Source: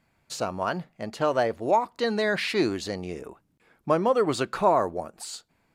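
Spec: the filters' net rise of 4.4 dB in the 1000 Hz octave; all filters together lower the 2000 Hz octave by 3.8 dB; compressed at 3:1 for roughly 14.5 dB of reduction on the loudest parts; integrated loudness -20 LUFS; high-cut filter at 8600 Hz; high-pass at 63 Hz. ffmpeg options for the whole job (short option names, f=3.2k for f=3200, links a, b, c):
-af "highpass=63,lowpass=8.6k,equalizer=f=1k:t=o:g=7,equalizer=f=2k:t=o:g=-8,acompressor=threshold=-33dB:ratio=3,volume=15.5dB"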